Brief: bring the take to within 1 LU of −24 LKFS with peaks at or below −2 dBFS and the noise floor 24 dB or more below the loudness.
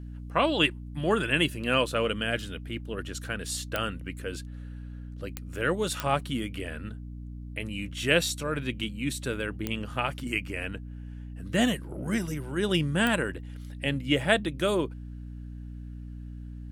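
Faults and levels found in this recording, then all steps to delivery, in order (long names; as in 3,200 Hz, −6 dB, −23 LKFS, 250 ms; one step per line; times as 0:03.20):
number of clicks 5; mains hum 60 Hz; hum harmonics up to 300 Hz; level of the hum −37 dBFS; integrated loudness −29.0 LKFS; sample peak −7.5 dBFS; target loudness −24.0 LKFS
→ click removal
hum removal 60 Hz, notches 5
level +5 dB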